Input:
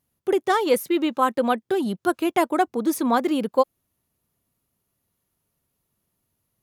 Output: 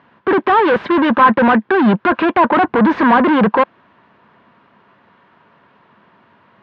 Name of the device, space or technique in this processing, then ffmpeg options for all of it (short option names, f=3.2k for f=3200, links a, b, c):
overdrive pedal into a guitar cabinet: -filter_complex "[0:a]asplit=2[a][b];[b]highpass=f=720:p=1,volume=40dB,asoftclip=type=tanh:threshold=-6dB[c];[a][c]amix=inputs=2:normalize=0,lowpass=f=2k:p=1,volume=-6dB,highpass=81,equalizer=f=210:t=q:w=4:g=6,equalizer=f=1k:t=q:w=4:g=8,equalizer=f=1.6k:t=q:w=4:g=8,lowpass=f=3.4k:w=0.5412,lowpass=f=3.4k:w=1.3066,highshelf=f=4.5k:g=-7,volume=-1dB"